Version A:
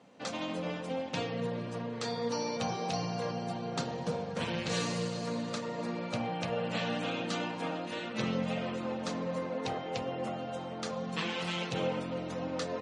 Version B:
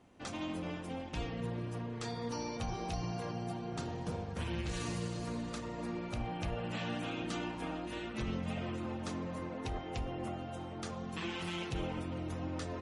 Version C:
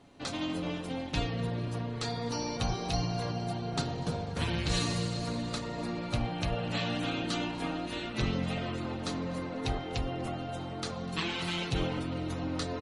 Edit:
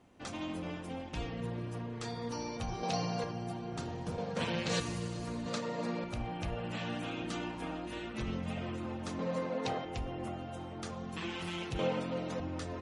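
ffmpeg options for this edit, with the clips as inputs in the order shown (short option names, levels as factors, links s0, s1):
-filter_complex "[0:a]asplit=5[s0][s1][s2][s3][s4];[1:a]asplit=6[s5][s6][s7][s8][s9][s10];[s5]atrim=end=2.832[s11];[s0]atrim=start=2.828:end=3.242[s12];[s6]atrim=start=3.238:end=4.182[s13];[s1]atrim=start=4.178:end=4.802[s14];[s7]atrim=start=4.798:end=5.462[s15];[s2]atrim=start=5.458:end=6.042[s16];[s8]atrim=start=6.038:end=9.192[s17];[s3]atrim=start=9.188:end=9.852[s18];[s9]atrim=start=9.848:end=11.792[s19];[s4]atrim=start=11.788:end=12.402[s20];[s10]atrim=start=12.398[s21];[s11][s12]acrossfade=d=0.004:c1=hsin:c2=hsin[s22];[s22][s13]acrossfade=d=0.004:c1=hsin:c2=hsin[s23];[s23][s14]acrossfade=d=0.004:c1=hsin:c2=hsin[s24];[s24][s15]acrossfade=d=0.004:c1=hsin:c2=hsin[s25];[s25][s16]acrossfade=d=0.004:c1=hsin:c2=hsin[s26];[s26][s17]acrossfade=d=0.004:c1=hsin:c2=hsin[s27];[s27][s18]acrossfade=d=0.004:c1=hsin:c2=hsin[s28];[s28][s19]acrossfade=d=0.004:c1=hsin:c2=hsin[s29];[s29][s20]acrossfade=d=0.004:c1=hsin:c2=hsin[s30];[s30][s21]acrossfade=d=0.004:c1=hsin:c2=hsin"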